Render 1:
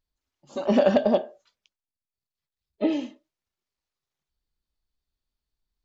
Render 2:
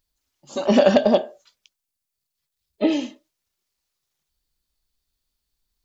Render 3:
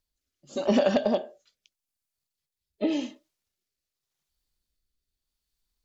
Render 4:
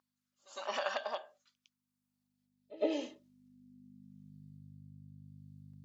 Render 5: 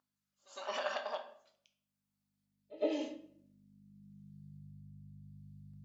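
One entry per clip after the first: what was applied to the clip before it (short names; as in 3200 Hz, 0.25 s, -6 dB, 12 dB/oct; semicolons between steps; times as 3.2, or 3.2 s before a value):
high shelf 3600 Hz +10 dB; gain +4 dB
compressor, threshold -15 dBFS, peak gain reduction 6 dB; rotary speaker horn 0.85 Hz; gain -2.5 dB
hum 50 Hz, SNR 14 dB; high-pass sweep 1100 Hz -> 130 Hz, 1.75–4.65; pre-echo 0.108 s -19 dB; gain -7 dB
shoebox room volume 110 m³, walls mixed, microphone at 0.4 m; gain -2.5 dB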